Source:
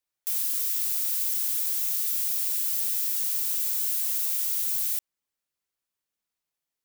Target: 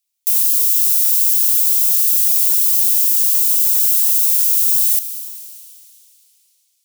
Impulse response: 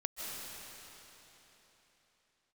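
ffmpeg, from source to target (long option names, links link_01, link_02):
-filter_complex "[0:a]asubboost=boost=3.5:cutoff=68,aexciter=amount=5.3:drive=3.5:freq=2300,asplit=2[link_01][link_02];[1:a]atrim=start_sample=2205[link_03];[link_02][link_03]afir=irnorm=-1:irlink=0,volume=-8dB[link_04];[link_01][link_04]amix=inputs=2:normalize=0,volume=-7dB"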